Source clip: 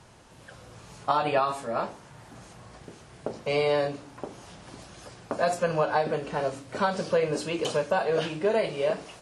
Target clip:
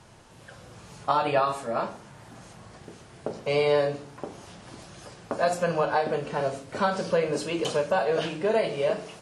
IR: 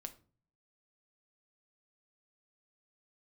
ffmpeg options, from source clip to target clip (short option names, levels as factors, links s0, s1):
-filter_complex "[0:a]asplit=2[s0][s1];[1:a]atrim=start_sample=2205,asetrate=29547,aresample=44100[s2];[s1][s2]afir=irnorm=-1:irlink=0,volume=2.51[s3];[s0][s3]amix=inputs=2:normalize=0,volume=0.376"